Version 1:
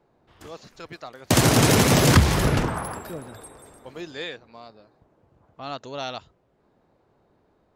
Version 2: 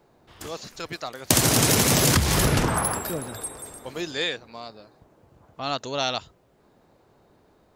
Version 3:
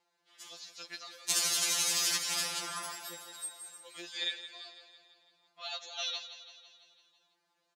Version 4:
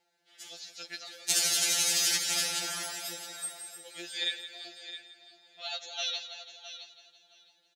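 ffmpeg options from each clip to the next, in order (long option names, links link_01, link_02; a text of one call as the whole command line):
ffmpeg -i in.wav -af "highshelf=frequency=4200:gain=10,acompressor=threshold=-21dB:ratio=6,volume=4.5dB" out.wav
ffmpeg -i in.wav -filter_complex "[0:a]bandpass=frequency=4700:width_type=q:width=0.7:csg=0,asplit=2[link_01][link_02];[link_02]aecho=0:1:167|334|501|668|835|1002|1169:0.251|0.151|0.0904|0.0543|0.0326|0.0195|0.0117[link_03];[link_01][link_03]amix=inputs=2:normalize=0,afftfilt=real='re*2.83*eq(mod(b,8),0)':imag='im*2.83*eq(mod(b,8),0)':win_size=2048:overlap=0.75,volume=-3.5dB" out.wav
ffmpeg -i in.wav -af "asuperstop=centerf=1100:order=4:qfactor=3.2,aecho=1:1:665|1330:0.251|0.0377,volume=3dB" out.wav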